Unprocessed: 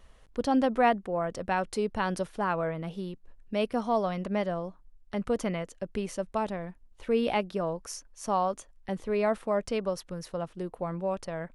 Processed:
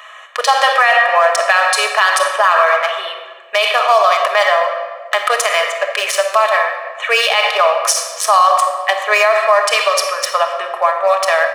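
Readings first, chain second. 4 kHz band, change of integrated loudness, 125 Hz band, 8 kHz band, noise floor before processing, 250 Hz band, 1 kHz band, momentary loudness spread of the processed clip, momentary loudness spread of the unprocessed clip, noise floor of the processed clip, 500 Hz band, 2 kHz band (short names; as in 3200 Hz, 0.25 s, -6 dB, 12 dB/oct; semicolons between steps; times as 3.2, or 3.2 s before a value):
+26.5 dB, +17.5 dB, under -30 dB, +24.5 dB, -57 dBFS, under -20 dB, +19.0 dB, 8 LU, 11 LU, -35 dBFS, +14.0 dB, +25.0 dB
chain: Wiener smoothing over 9 samples; Bessel high-pass 1300 Hz, order 6; comb 1.7 ms, depth 57%; in parallel at +2.5 dB: compressor, threshold -45 dBFS, peak gain reduction 18.5 dB; on the sum: shoebox room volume 1700 m³, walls mixed, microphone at 1.4 m; maximiser +26 dB; gain -1 dB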